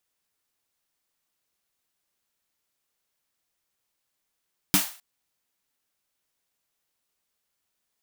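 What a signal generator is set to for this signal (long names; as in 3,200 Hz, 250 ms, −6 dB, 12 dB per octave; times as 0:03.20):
synth snare length 0.26 s, tones 190 Hz, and 290 Hz, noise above 670 Hz, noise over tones 1 dB, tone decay 0.14 s, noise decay 0.40 s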